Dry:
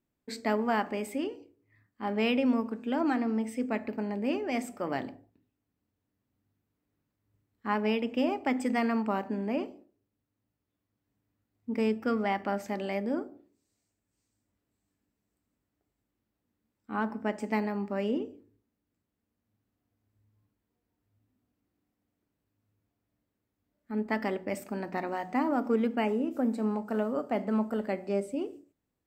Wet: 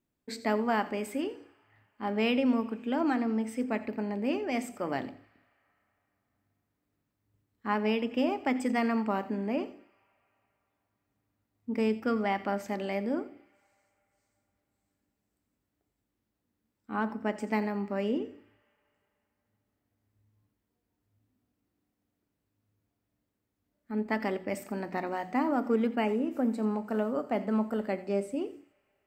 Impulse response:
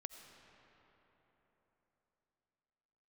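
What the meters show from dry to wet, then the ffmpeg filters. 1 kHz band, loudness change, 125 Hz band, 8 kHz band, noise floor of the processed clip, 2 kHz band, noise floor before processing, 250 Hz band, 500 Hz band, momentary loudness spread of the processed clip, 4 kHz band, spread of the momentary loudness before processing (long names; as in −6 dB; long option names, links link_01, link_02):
0.0 dB, 0.0 dB, 0.0 dB, can't be measured, −82 dBFS, 0.0 dB, −84 dBFS, 0.0 dB, 0.0 dB, 8 LU, 0.0 dB, 8 LU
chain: -filter_complex "[0:a]asplit=2[link_01][link_02];[link_02]highpass=1500[link_03];[1:a]atrim=start_sample=2205,adelay=86[link_04];[link_03][link_04]afir=irnorm=-1:irlink=0,volume=-10dB[link_05];[link_01][link_05]amix=inputs=2:normalize=0"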